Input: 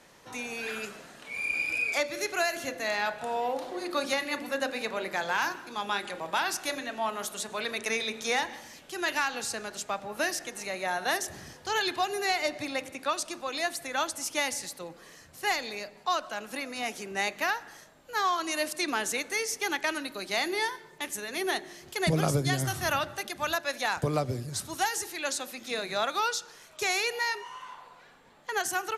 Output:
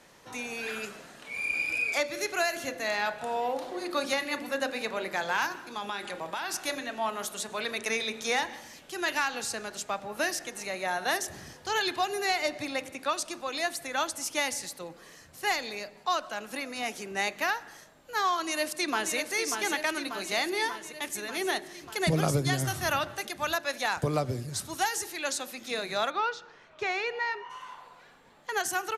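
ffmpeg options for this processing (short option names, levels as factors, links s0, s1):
-filter_complex "[0:a]asettb=1/sr,asplit=3[s0][s1][s2];[s0]atrim=end=5.464[s3];[s1]atrim=start=5.46:end=6.54,asetpts=PTS-STARTPTS,afade=t=in:d=0.004:c=qsin,afade=t=out:st=1.076:d=0.004:c=qsin,acompressor=threshold=0.0355:ratio=6:attack=3.2:release=140:knee=1:detection=peak[s4];[s2]atrim=start=6.536[s5];[s3][s4]acrossfade=d=0.004:c1=hsin:c2=qsin[s6];[s6][s5]acrossfade=d=0.004:c1=qsin:c2=hsin,asplit=2[s7][s8];[s8]afade=t=in:st=18.33:d=0.01,afade=t=out:st=19.15:d=0.01,aecho=0:1:590|1180|1770|2360|2950|3540|4130|4720|5310|5900|6490:0.473151|0.331206|0.231844|0.162291|0.113604|0.0795225|0.0556658|0.038966|0.0272762|0.0190934|0.0133654[s9];[s7][s9]amix=inputs=2:normalize=0,asplit=3[s10][s11][s12];[s10]afade=t=out:st=26.09:d=0.02[s13];[s11]lowpass=2500,afade=t=in:st=26.09:d=0.02,afade=t=out:st=27.49:d=0.02[s14];[s12]afade=t=in:st=27.49:d=0.02[s15];[s13][s14][s15]amix=inputs=3:normalize=0"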